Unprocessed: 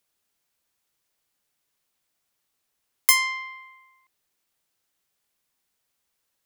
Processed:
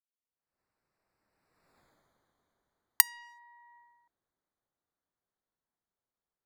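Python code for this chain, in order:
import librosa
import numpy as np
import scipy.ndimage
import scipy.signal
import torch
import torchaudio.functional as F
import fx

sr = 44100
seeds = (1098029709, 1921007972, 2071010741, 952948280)

y = fx.wiener(x, sr, points=15)
y = fx.recorder_agc(y, sr, target_db=-8.5, rise_db_per_s=44.0, max_gain_db=30)
y = fx.doppler_pass(y, sr, speed_mps=34, closest_m=5.6, pass_at_s=1.81)
y = y * 10.0 ** (-10.5 / 20.0)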